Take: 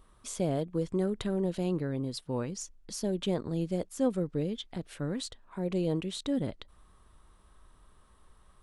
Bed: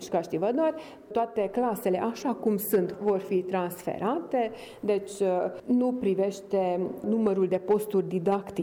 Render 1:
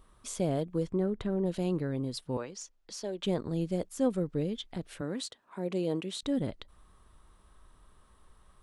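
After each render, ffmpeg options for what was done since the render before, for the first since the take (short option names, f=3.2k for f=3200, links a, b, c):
-filter_complex "[0:a]asplit=3[a][b][c];[a]afade=t=out:st=0.86:d=0.02[d];[b]lowpass=f=1.7k:p=1,afade=t=in:st=0.86:d=0.02,afade=t=out:st=1.45:d=0.02[e];[c]afade=t=in:st=1.45:d=0.02[f];[d][e][f]amix=inputs=3:normalize=0,asettb=1/sr,asplit=3[g][h][i];[g]atrim=end=2.374[j];[h]atrim=start=2.37:end=3.24,asetpts=PTS-STARTPTS,afade=t=in:d=0.004:c=qsin,afade=t=out:st=0.866:d=0.004:c=qsin,acrossover=split=370 7100:gain=0.2 1 0.224[k][l][m];[k][l][m]amix=inputs=3:normalize=0[n];[i]atrim=start=3.236[o];[j][n]acrossfade=d=0.004:c1=hsin:c2=qsin[p];[p][o]acrossfade=d=0.004:c1=qsin:c2=hsin,asettb=1/sr,asplit=3[q][r][s];[q]atrim=end=5.014[t];[r]atrim=start=5.01:end=6.23,asetpts=PTS-STARTPTS,afade=t=in:d=0.004:c=qsin,afade=t=out:st=1.216:d=0.004:c=qsin,highpass=200[u];[s]atrim=start=6.226[v];[t][u]acrossfade=d=0.004:c1=hsin:c2=qsin[w];[w][v]acrossfade=d=0.004:c1=qsin:c2=hsin"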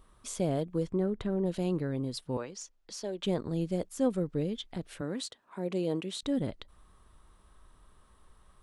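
-af anull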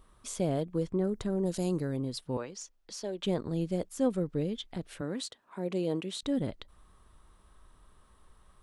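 -filter_complex "[0:a]asettb=1/sr,asplit=3[a][b][c];[a]atrim=end=1.044[d];[b]atrim=start=1.04:end=1.97,asetpts=PTS-STARTPTS,afade=t=in:d=0.004:c=qsin,afade=t=out:st=0.926:d=0.004:c=qsin,highshelf=f=4.3k:t=q:w=1.5:g=9.5[e];[c]atrim=start=1.966[f];[d][e]acrossfade=d=0.004:c1=hsin:c2=qsin[g];[g][f]acrossfade=d=0.004:c1=qsin:c2=hsin"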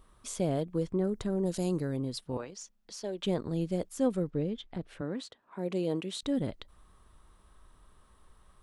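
-filter_complex "[0:a]asettb=1/sr,asplit=3[a][b][c];[a]atrim=end=2.204[d];[b]atrim=start=2.2:end=3.04,asetpts=PTS-STARTPTS,afade=t=in:d=0.004:c=qsin,afade=t=out:st=0.836:d=0.004:c=qsin,tremolo=f=210:d=0.4[e];[c]atrim=start=3.036[f];[d][e]acrossfade=d=0.004:c1=hsin:c2=qsin[g];[g][f]acrossfade=d=0.004:c1=qsin:c2=hsin,asettb=1/sr,asplit=3[h][i][j];[h]atrim=end=4.304[k];[i]atrim=start=4.3:end=5.59,asetpts=PTS-STARTPTS,afade=t=in:d=0.004:c=qsin,afade=t=out:st=1.286:d=0.004:c=qsin,lowpass=f=2.3k:p=1[l];[j]atrim=start=5.586[m];[k][l]acrossfade=d=0.004:c1=hsin:c2=qsin[n];[n][m]acrossfade=d=0.004:c1=qsin:c2=hsin"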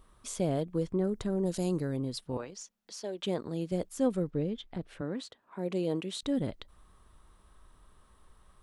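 -filter_complex "[0:a]asettb=1/sr,asplit=3[a][b][c];[a]atrim=end=2.614[d];[b]atrim=start=2.61:end=3.72,asetpts=PTS-STARTPTS,afade=t=in:d=0.004:c=qsin,afade=t=out:st=1.106:d=0.004:c=qsin,highpass=f=220:p=1[e];[c]atrim=start=3.716[f];[d][e]acrossfade=d=0.004:c1=hsin:c2=qsin[g];[g][f]acrossfade=d=0.004:c1=qsin:c2=hsin"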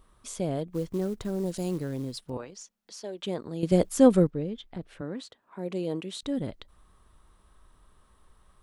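-filter_complex "[0:a]asettb=1/sr,asplit=3[a][b][c];[a]atrim=end=0.724[d];[b]atrim=start=0.72:end=2.3,asetpts=PTS-STARTPTS,afade=t=in:d=0.004:c=qsin,afade=t=out:st=1.576:d=0.004:c=qsin,acrusher=bits=6:mode=log:mix=0:aa=0.000001[e];[c]atrim=start=2.296[f];[d][e]acrossfade=d=0.004:c1=hsin:c2=qsin[g];[g][f]acrossfade=d=0.004:c1=qsin:c2=hsin,asplit=3[h][i][j];[h]atrim=end=3.632[k];[i]atrim=start=3.628:end=4.272,asetpts=PTS-STARTPTS,volume=10.5dB[l];[j]atrim=start=4.268[m];[k][l]acrossfade=d=0.004:c1=hsin:c2=hsin[n];[n][m]acrossfade=d=0.004:c1=hsin:c2=hsin"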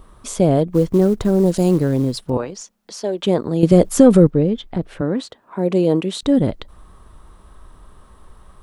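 -filter_complex "[0:a]acrossover=split=1300[a][b];[a]acontrast=35[c];[c][b]amix=inputs=2:normalize=0,alimiter=level_in=10dB:limit=-1dB:release=50:level=0:latency=1"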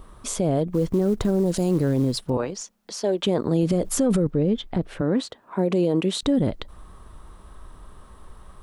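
-af "alimiter=limit=-13dB:level=0:latency=1:release=50"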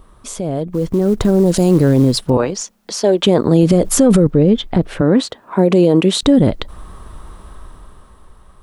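-af "dynaudnorm=f=120:g=17:m=11.5dB"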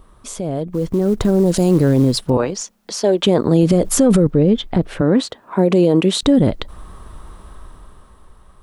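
-af "volume=-2dB"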